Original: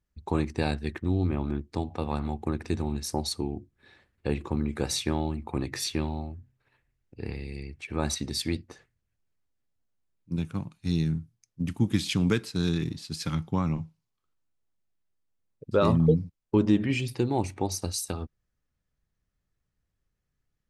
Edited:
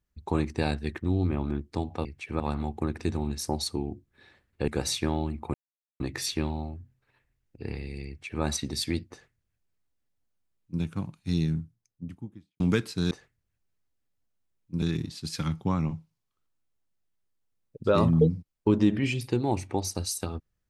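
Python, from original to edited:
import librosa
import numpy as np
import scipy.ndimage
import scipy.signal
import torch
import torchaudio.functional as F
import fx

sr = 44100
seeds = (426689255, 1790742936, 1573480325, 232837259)

y = fx.studio_fade_out(x, sr, start_s=10.9, length_s=1.28)
y = fx.edit(y, sr, fx.cut(start_s=4.33, length_s=0.39),
    fx.insert_silence(at_s=5.58, length_s=0.46),
    fx.duplicate(start_s=7.66, length_s=0.35, to_s=2.05),
    fx.duplicate(start_s=8.69, length_s=1.71, to_s=12.69), tone=tone)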